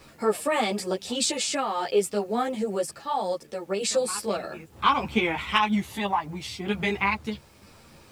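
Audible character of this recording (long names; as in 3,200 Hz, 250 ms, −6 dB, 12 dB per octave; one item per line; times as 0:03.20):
sample-and-hold tremolo 2.1 Hz
a quantiser's noise floor 10 bits, dither none
a shimmering, thickened sound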